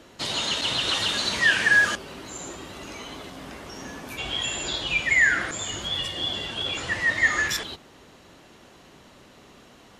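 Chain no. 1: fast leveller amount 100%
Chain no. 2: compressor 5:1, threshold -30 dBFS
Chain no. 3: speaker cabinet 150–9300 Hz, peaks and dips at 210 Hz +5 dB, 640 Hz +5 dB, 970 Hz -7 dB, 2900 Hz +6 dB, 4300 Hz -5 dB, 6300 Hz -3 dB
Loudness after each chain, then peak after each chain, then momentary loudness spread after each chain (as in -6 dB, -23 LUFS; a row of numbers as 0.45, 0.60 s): -13.0, -32.0, -22.0 LUFS; -2.5, -19.5, -7.5 dBFS; 2, 21, 20 LU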